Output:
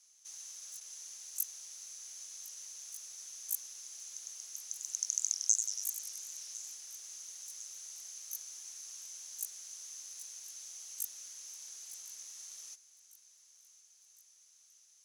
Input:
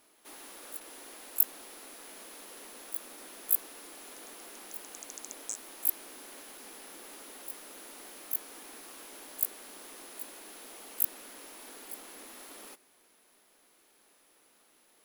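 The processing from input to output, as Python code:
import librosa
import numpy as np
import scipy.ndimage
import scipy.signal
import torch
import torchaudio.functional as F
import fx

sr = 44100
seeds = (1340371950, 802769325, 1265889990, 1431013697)

y = fx.bandpass_q(x, sr, hz=6200.0, q=11.0)
y = fx.echo_feedback(y, sr, ms=1055, feedback_pct=60, wet_db=-19.0)
y = fx.echo_warbled(y, sr, ms=95, feedback_pct=67, rate_hz=2.8, cents=182, wet_db=-7, at=(4.65, 6.75))
y = F.gain(torch.from_numpy(y), 17.5).numpy()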